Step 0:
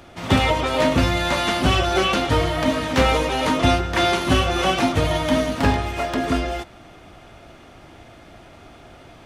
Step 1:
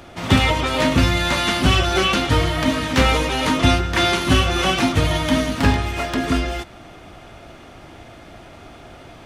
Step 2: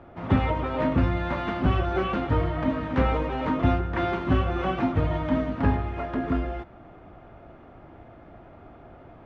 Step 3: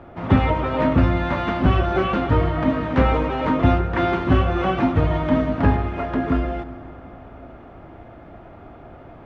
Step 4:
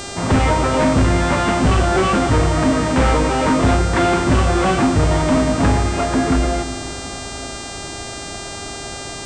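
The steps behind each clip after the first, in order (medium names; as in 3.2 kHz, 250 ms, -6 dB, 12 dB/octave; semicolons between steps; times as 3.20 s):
dynamic bell 620 Hz, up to -6 dB, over -34 dBFS, Q 0.89; trim +3.5 dB
low-pass 1.3 kHz 12 dB/octave; trim -5.5 dB
reverberation RT60 3.8 s, pre-delay 103 ms, DRR 15 dB; trim +5.5 dB
saturation -18.5 dBFS, distortion -9 dB; mains buzz 400 Hz, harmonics 22, -40 dBFS -1 dB/octave; trim +8 dB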